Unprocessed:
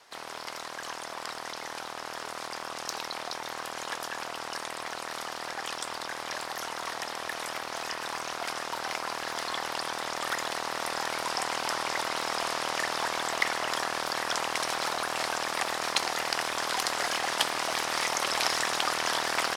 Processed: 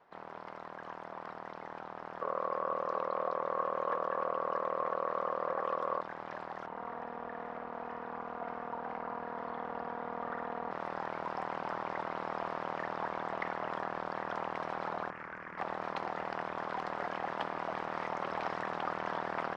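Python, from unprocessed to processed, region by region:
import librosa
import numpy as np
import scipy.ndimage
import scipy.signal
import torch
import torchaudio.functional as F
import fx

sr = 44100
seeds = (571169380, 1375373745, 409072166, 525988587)

y = fx.chain(x, sr, fx.high_shelf(hz=8000.0, db=-7.5),
    fx.small_body(hz=(530.0, 1100.0), ring_ms=25, db=16), at=(2.21, 6.01))
y = fx.chain(y, sr, fx.lowpass(hz=1400.0, slope=6),
    fx.room_flutter(wall_m=9.3, rt60_s=0.73), at=(6.66, 10.71))
y = fx.chain(y, sr, fx.air_absorb(metres=71.0),
    fx.fixed_phaser(hz=1600.0, stages=4),
    fx.doppler_dist(depth_ms=0.35), at=(15.1, 15.58))
y = scipy.signal.sosfilt(scipy.signal.butter(2, 1200.0, 'lowpass', fs=sr, output='sos'), y)
y = fx.peak_eq(y, sr, hz=180.0, db=13.0, octaves=0.2)
y = y * 10.0 ** (-3.5 / 20.0)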